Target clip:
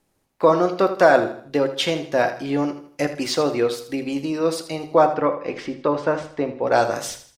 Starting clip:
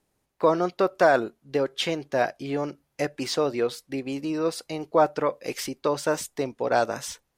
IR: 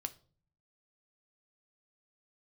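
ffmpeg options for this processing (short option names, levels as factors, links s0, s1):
-filter_complex "[0:a]asplit=3[s0][s1][s2];[s0]afade=t=out:st=5.05:d=0.02[s3];[s1]lowpass=2400,afade=t=in:st=5.05:d=0.02,afade=t=out:st=6.65:d=0.02[s4];[s2]afade=t=in:st=6.65:d=0.02[s5];[s3][s4][s5]amix=inputs=3:normalize=0,aecho=1:1:80|160|240|320:0.251|0.0955|0.0363|0.0138[s6];[1:a]atrim=start_sample=2205,afade=t=out:st=0.26:d=0.01,atrim=end_sample=11907[s7];[s6][s7]afir=irnorm=-1:irlink=0,volume=2"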